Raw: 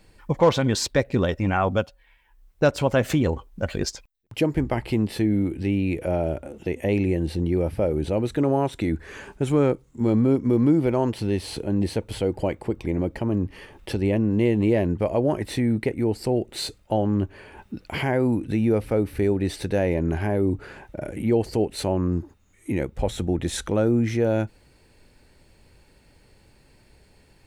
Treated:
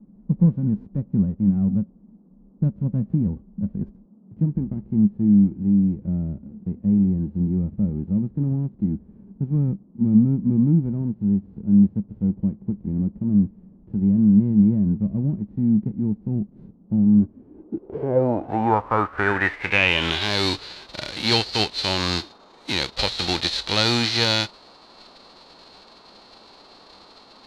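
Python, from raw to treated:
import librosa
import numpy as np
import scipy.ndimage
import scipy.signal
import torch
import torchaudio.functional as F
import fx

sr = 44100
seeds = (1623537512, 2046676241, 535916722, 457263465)

y = fx.envelope_flatten(x, sr, power=0.3)
y = fx.dmg_noise_band(y, sr, seeds[0], low_hz=180.0, high_hz=1200.0, level_db=-50.0)
y = fx.filter_sweep_lowpass(y, sr, from_hz=200.0, to_hz=4200.0, start_s=17.15, end_s=20.34, q=6.6)
y = y * librosa.db_to_amplitude(-2.0)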